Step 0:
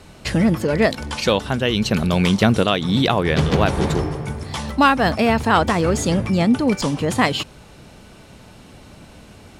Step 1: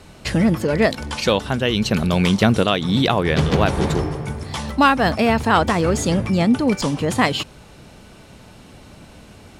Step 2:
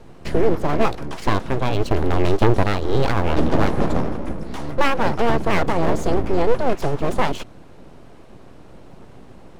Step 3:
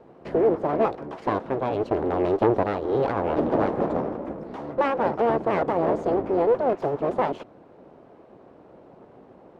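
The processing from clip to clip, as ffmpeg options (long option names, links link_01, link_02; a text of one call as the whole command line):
ffmpeg -i in.wav -af anull out.wav
ffmpeg -i in.wav -af "tiltshelf=frequency=1200:gain=8,aeval=exprs='abs(val(0))':channel_layout=same,volume=-4dB" out.wav
ffmpeg -i in.wav -af "bandpass=frequency=540:width_type=q:width=0.86:csg=0" out.wav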